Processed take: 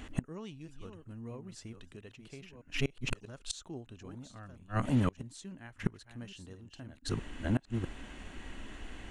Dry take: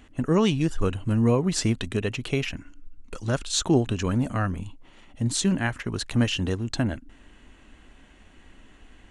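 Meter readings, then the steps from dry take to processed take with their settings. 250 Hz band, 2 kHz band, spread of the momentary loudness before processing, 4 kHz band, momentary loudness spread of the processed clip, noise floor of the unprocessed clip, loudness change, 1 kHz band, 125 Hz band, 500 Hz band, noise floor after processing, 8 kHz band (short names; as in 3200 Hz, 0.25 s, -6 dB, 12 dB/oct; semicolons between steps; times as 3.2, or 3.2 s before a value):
-12.5 dB, -10.5 dB, 11 LU, -14.0 dB, 17 LU, -53 dBFS, -13.5 dB, -11.0 dB, -11.0 dB, -15.5 dB, -60 dBFS, -16.5 dB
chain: reverse delay 0.654 s, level -9 dB; flipped gate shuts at -23 dBFS, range -29 dB; gain +5.5 dB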